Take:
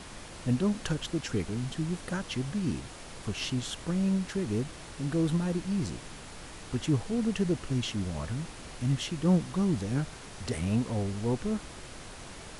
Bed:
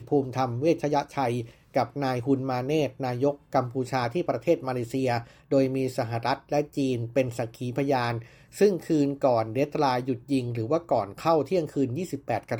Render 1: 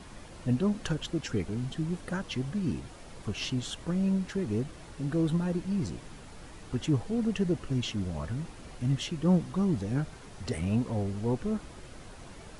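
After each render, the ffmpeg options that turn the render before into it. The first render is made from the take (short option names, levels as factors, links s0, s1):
-af "afftdn=nr=7:nf=-45"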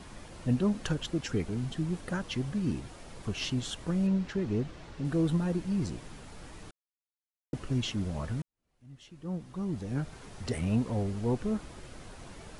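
-filter_complex "[0:a]asettb=1/sr,asplit=3[s0][s1][s2];[s0]atrim=end=4.074[s3];[s1]atrim=start=4.07:end=5.05,asetpts=PTS-STARTPTS,afade=t=in:d=0.004:c=qsin,afade=t=out:st=0.976:d=0.004:c=qsin,lowpass=5600[s4];[s2]atrim=start=5.046[s5];[s3][s4]acrossfade=d=0.004:c1=hsin:c2=qsin[s6];[s6][s5]acrossfade=d=0.004:c1=qsin:c2=hsin,asplit=4[s7][s8][s9][s10];[s7]atrim=end=6.71,asetpts=PTS-STARTPTS,afade=t=out:st=6.706:d=0.004:c=hsin[s11];[s8]atrim=start=6.71:end=7.53,asetpts=PTS-STARTPTS,volume=0[s12];[s9]atrim=start=7.53:end=8.42,asetpts=PTS-STARTPTS,afade=t=in:d=0.004:c=hsin,afade=t=out:st=0.886:d=0.004:c=hsin[s13];[s10]atrim=start=8.42,asetpts=PTS-STARTPTS,afade=t=in:d=1.81:c=qua[s14];[s11][s12][s13][s14]concat=n=4:v=0:a=1"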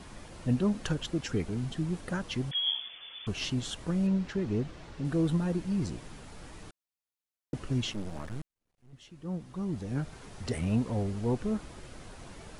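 -filter_complex "[0:a]asettb=1/sr,asplit=3[s0][s1][s2];[s0]atrim=end=2.514[s3];[s1]atrim=start=2.51:end=3.27,asetpts=PTS-STARTPTS,afade=t=in:d=0.004:c=qsin,afade=t=out:st=0.756:d=0.004:c=qsin,lowpass=f=3000:t=q:w=0.5098,lowpass=f=3000:t=q:w=0.6013,lowpass=f=3000:t=q:w=0.9,lowpass=f=3000:t=q:w=2.563,afreqshift=-3500[s4];[s2]atrim=start=3.266[s5];[s3][s4]acrossfade=d=0.004:c1=hsin:c2=qsin[s6];[s6][s5]acrossfade=d=0.004:c1=qsin:c2=hsin,asettb=1/sr,asplit=3[s7][s8][s9];[s7]atrim=end=7.934[s10];[s8]atrim=start=7.93:end=8.93,asetpts=PTS-STARTPTS,afade=t=in:d=0.004:c=qsin,afade=t=out:st=0.996:d=0.004:c=qsin,aeval=exprs='max(val(0),0)':c=same[s11];[s9]atrim=start=8.926[s12];[s10][s11]acrossfade=d=0.004:c1=hsin:c2=qsin[s13];[s13][s12]acrossfade=d=0.004:c1=qsin:c2=hsin"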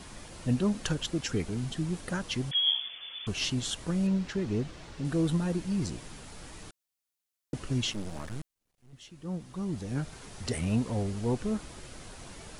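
-af "highshelf=f=3100:g=7"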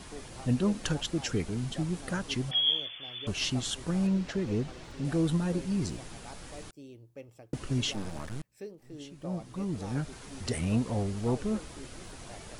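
-filter_complex "[1:a]volume=0.075[s0];[0:a][s0]amix=inputs=2:normalize=0"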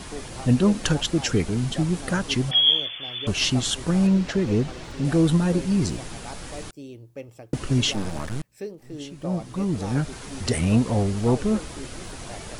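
-af "volume=2.66"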